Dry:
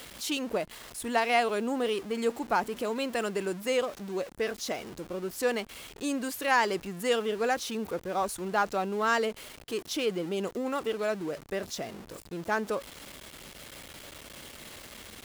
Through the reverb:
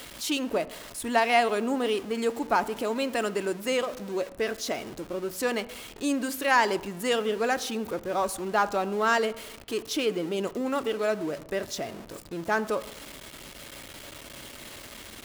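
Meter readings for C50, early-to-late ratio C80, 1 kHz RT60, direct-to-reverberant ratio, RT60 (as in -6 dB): 18.0 dB, 20.0 dB, 0.95 s, 12.0 dB, 0.95 s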